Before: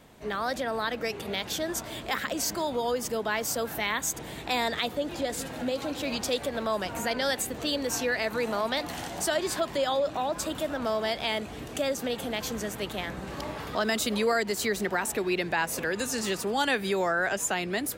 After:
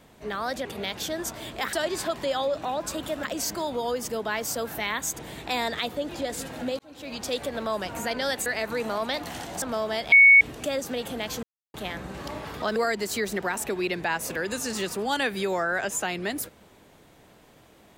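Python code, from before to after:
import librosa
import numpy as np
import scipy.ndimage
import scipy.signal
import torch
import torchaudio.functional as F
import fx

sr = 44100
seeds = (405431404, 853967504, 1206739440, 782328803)

y = fx.edit(x, sr, fx.cut(start_s=0.65, length_s=0.5),
    fx.fade_in_span(start_s=5.79, length_s=0.59),
    fx.cut(start_s=7.46, length_s=0.63),
    fx.move(start_s=9.25, length_s=1.5, to_s=2.23),
    fx.bleep(start_s=11.25, length_s=0.29, hz=2220.0, db=-10.0),
    fx.silence(start_s=12.56, length_s=0.31),
    fx.cut(start_s=13.89, length_s=0.35), tone=tone)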